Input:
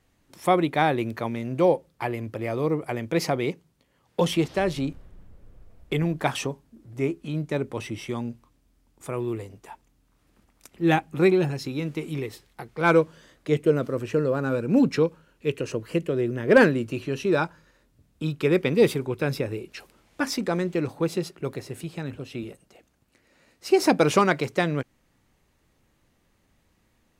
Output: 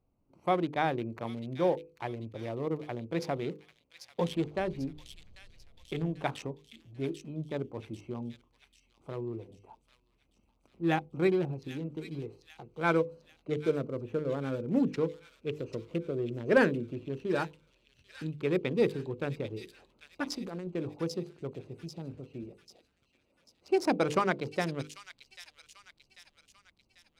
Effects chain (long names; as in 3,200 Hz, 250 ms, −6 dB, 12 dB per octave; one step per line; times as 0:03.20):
adaptive Wiener filter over 25 samples
high-shelf EQ 11,000 Hz −5.5 dB
mains-hum notches 50/100/150/200/250/300/350/400/450/500 Hz
0:20.27–0:20.68: compressor whose output falls as the input rises −29 dBFS, ratio −0.5
on a send: delay with a high-pass on its return 792 ms, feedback 48%, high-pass 3,600 Hz, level −3.5 dB
on the sum: level −7 dB